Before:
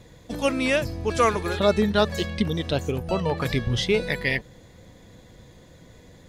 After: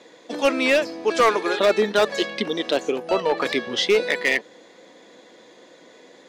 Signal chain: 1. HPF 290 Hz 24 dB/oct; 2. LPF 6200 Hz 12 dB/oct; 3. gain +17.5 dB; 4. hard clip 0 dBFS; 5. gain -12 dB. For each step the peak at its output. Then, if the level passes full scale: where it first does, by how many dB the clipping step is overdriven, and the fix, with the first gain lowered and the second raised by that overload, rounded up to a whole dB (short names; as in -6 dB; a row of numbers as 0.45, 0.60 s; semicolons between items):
-8.0, -8.0, +9.5, 0.0, -12.0 dBFS; step 3, 9.5 dB; step 3 +7.5 dB, step 5 -2 dB